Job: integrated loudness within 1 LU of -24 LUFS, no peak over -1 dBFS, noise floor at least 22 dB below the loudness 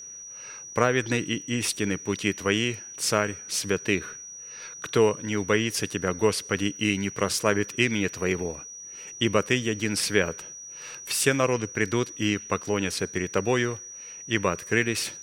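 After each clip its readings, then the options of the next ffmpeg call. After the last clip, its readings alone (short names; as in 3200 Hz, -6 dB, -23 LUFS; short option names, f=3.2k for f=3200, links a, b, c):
steady tone 5800 Hz; tone level -39 dBFS; loudness -26.0 LUFS; peak -4.5 dBFS; loudness target -24.0 LUFS
-> -af "bandreject=f=5.8k:w=30"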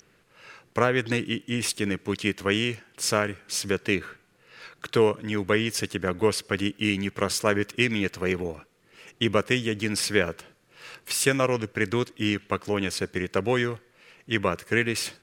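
steady tone none; loudness -26.0 LUFS; peak -4.5 dBFS; loudness target -24.0 LUFS
-> -af "volume=2dB"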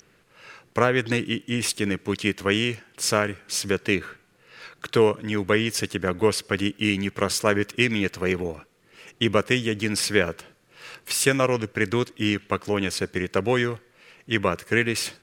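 loudness -24.0 LUFS; peak -2.5 dBFS; noise floor -61 dBFS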